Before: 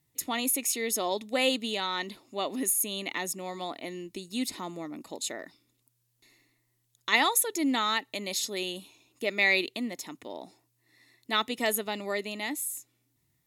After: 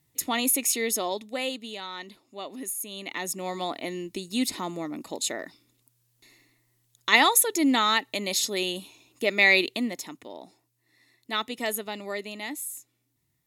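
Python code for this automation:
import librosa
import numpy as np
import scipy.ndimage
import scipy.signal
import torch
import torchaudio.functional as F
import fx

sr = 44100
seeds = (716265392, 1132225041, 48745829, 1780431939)

y = fx.gain(x, sr, db=fx.line((0.82, 4.0), (1.54, -6.0), (2.83, -6.0), (3.47, 5.0), (9.83, 5.0), (10.31, -1.5)))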